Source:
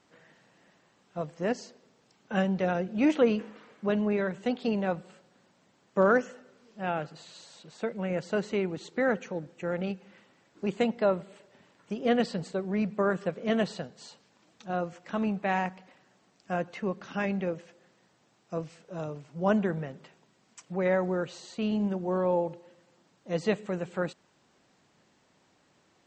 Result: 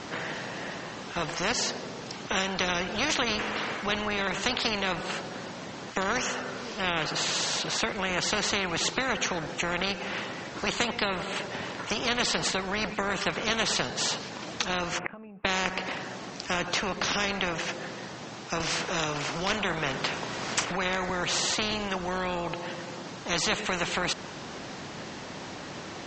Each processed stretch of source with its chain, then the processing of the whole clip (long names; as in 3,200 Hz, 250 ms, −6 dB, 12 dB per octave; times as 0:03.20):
0:14.99–0:15.45: elliptic low-pass filter 2,600 Hz, stop band 50 dB + downward compressor 12 to 1, threshold −36 dBFS + gate with flip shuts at −42 dBFS, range −29 dB
0:18.60–0:21.10: hard clipping −15.5 dBFS + double-tracking delay 35 ms −13.5 dB + multiband upward and downward compressor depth 40%
whole clip: Butterworth low-pass 6,900 Hz 36 dB per octave; downward compressor 1.5 to 1, threshold −35 dBFS; every bin compressed towards the loudest bin 4 to 1; level +8.5 dB